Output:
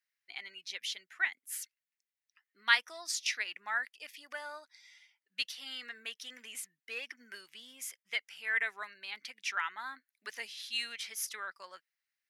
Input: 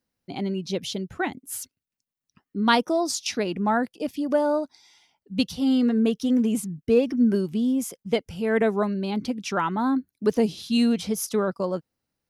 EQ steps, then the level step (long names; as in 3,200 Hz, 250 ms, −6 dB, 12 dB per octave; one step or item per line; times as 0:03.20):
high-pass with resonance 1,900 Hz, resonance Q 3.5
−7.0 dB